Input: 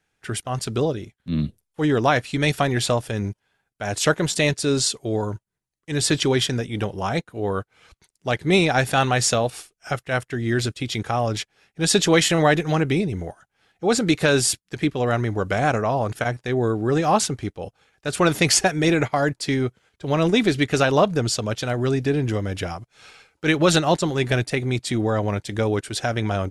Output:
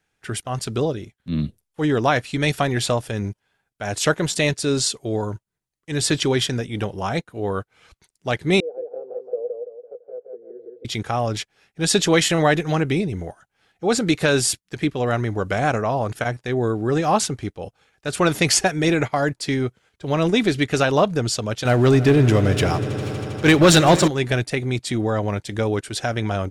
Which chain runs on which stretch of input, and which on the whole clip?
8.6–10.85 Butterworth band-pass 470 Hz, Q 5.2 + feedback echo 0.168 s, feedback 40%, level -3.5 dB
21.65–24.08 sample leveller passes 2 + swelling echo 80 ms, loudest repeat 5, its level -18 dB
whole clip: dry

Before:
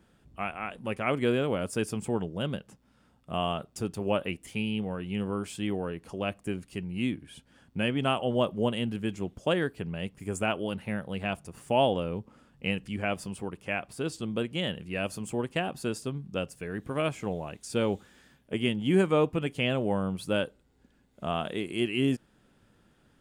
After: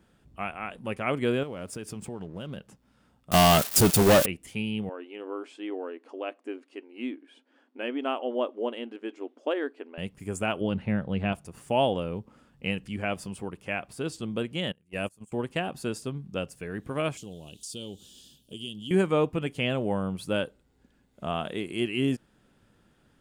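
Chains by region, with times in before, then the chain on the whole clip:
1.43–2.57 backlash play -47.5 dBFS + compressor, threshold -33 dBFS
3.31–4.26 switching spikes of -22 dBFS + expander -30 dBFS + sample leveller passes 5
4.89–9.98 brick-wall FIR high-pass 240 Hz + tape spacing loss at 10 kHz 21 dB
10.61–11.33 LPF 4600 Hz + low shelf 370 Hz +8 dB
14.72–15.32 gate -34 dBFS, range -25 dB + resonant high shelf 6000 Hz +6.5 dB, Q 1.5
17.17–18.91 EQ curve 340 Hz 0 dB, 2100 Hz -20 dB, 3000 Hz +12 dB + compressor 2:1, threshold -44 dBFS
whole clip: dry

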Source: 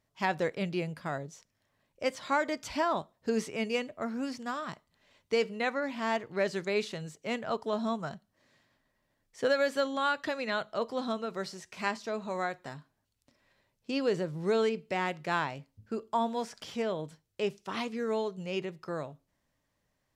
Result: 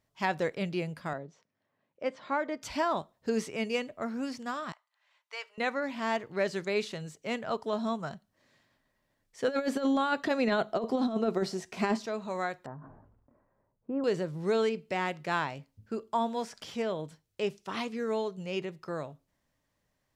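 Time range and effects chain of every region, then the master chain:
1.13–2.62 HPF 170 Hz + tape spacing loss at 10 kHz 25 dB
4.72–5.58 HPF 860 Hz 24 dB/oct + high shelf 3000 Hz -10.5 dB
9.48–12.06 small resonant body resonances 240/380/690 Hz, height 10 dB, ringing for 25 ms + negative-ratio compressor -27 dBFS, ratio -0.5
12.66–14.04 LPF 1200 Hz 24 dB/oct + sustainer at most 55 dB/s
whole clip: dry

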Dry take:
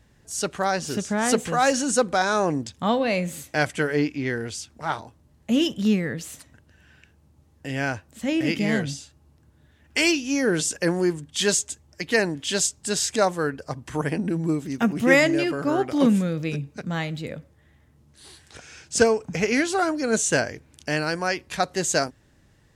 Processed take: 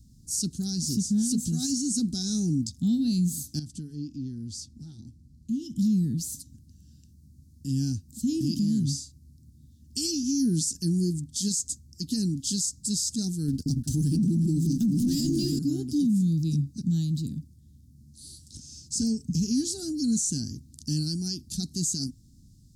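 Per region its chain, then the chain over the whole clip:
3.59–5.76 high shelf 7200 Hz -12 dB + compressor 2:1, threshold -39 dBFS
13.48–15.59 sample leveller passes 2 + echo with dull and thin repeats by turns 0.177 s, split 930 Hz, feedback 53%, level -6 dB
whole clip: elliptic band-stop 250–4500 Hz, stop band 40 dB; bell 3300 Hz -5 dB 1 oct; limiter -24 dBFS; gain +5.5 dB

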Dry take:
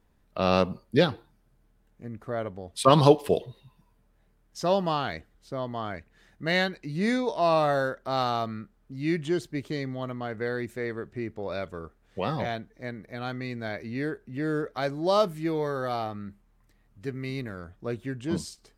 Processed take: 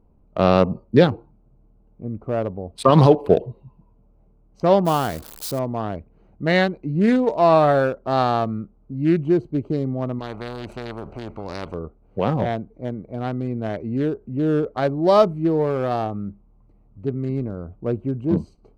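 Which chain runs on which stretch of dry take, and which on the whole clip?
4.85–5.59 switching spikes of -21.5 dBFS + bell 2000 Hz -5 dB 0.44 oct
10.19–11.74 LPF 9900 Hz + spectral compressor 4:1
whole clip: Wiener smoothing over 25 samples; high shelf 2200 Hz -9.5 dB; maximiser +10.5 dB; gain -1 dB

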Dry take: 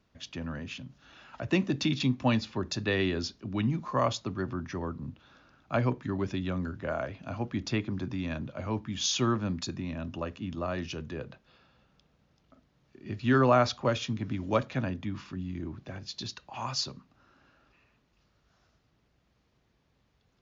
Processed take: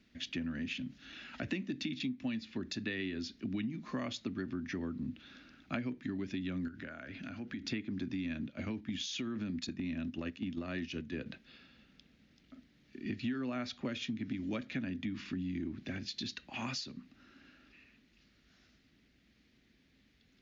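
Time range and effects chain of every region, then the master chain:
6.68–7.68 bell 1500 Hz +7.5 dB 0.37 oct + compressor, threshold -43 dBFS
8.48–11.26 gate -38 dBFS, range -8 dB + compressor, threshold -32 dBFS
whole clip: graphic EQ 125/250/500/1000/2000/4000 Hz -6/+11/-4/-11/+9/+5 dB; compressor 12:1, threshold -34 dBFS; dynamic EQ 5100 Hz, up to -4 dB, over -52 dBFS, Q 1.1

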